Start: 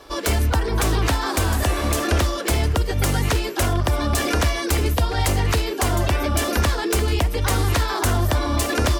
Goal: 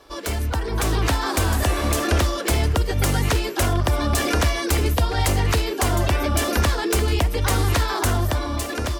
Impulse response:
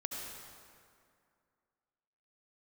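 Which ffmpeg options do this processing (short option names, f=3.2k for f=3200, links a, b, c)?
-af "dynaudnorm=f=120:g=13:m=6dB,volume=-5.5dB"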